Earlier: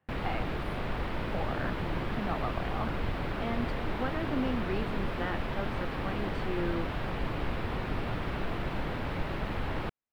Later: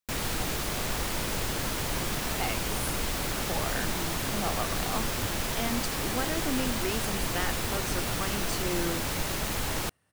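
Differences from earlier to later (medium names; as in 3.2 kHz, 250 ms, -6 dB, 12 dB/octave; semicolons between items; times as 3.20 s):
speech: entry +2.15 s; master: remove distance through air 450 m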